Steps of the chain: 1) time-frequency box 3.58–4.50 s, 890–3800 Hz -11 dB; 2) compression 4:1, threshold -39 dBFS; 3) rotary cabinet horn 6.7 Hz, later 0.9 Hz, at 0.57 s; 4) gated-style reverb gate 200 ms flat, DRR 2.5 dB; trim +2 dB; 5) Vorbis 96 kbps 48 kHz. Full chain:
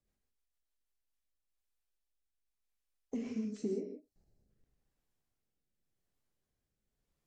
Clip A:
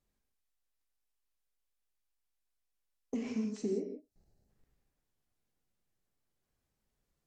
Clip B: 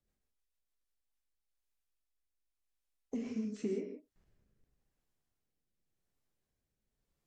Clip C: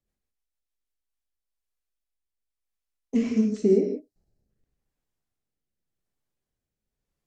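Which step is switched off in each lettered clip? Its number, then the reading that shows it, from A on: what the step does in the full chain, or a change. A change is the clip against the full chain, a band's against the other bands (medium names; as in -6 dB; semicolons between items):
3, 2 kHz band +3.5 dB; 1, 2 kHz band +2.5 dB; 2, mean gain reduction 13.0 dB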